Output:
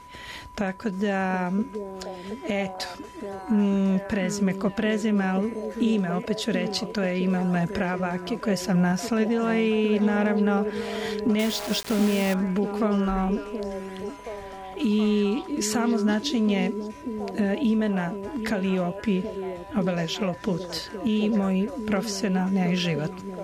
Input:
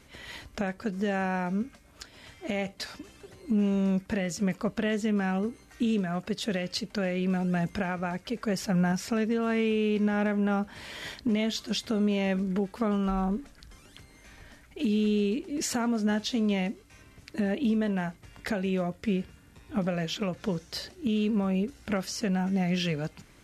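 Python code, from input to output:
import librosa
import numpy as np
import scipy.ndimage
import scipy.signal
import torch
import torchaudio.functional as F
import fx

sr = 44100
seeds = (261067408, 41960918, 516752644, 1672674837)

y = x + 10.0 ** (-48.0 / 20.0) * np.sin(2.0 * np.pi * 990.0 * np.arange(len(x)) / sr)
y = fx.echo_stepped(y, sr, ms=725, hz=350.0, octaves=0.7, feedback_pct=70, wet_db=-3.5)
y = fx.quant_dither(y, sr, seeds[0], bits=6, dither='none', at=(11.39, 12.34))
y = F.gain(torch.from_numpy(y), 3.5).numpy()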